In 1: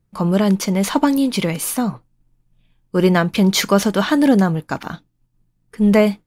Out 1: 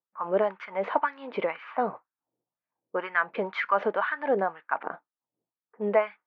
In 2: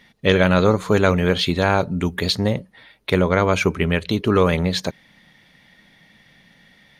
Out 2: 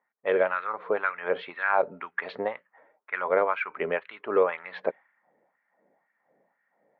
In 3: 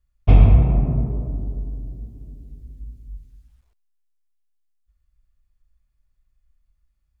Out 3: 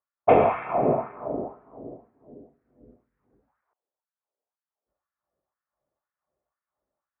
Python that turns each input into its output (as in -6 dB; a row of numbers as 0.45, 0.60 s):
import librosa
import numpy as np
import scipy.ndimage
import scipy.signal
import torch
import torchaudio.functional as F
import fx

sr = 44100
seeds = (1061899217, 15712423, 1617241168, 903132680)

y = scipy.signal.sosfilt(scipy.signal.butter(2, 49.0, 'highpass', fs=sr, output='sos'), x)
y = fx.env_lowpass(y, sr, base_hz=580.0, full_db=-14.0)
y = scipy.signal.sosfilt(scipy.signal.butter(4, 2200.0, 'lowpass', fs=sr, output='sos'), y)
y = fx.rider(y, sr, range_db=3, speed_s=0.5)
y = fx.filter_lfo_highpass(y, sr, shape='sine', hz=2.0, low_hz=460.0, high_hz=1600.0, q=2.2)
y = y * 10.0 ** (-30 / 20.0) / np.sqrt(np.mean(np.square(y)))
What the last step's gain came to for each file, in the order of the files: -8.0, -8.0, +10.0 dB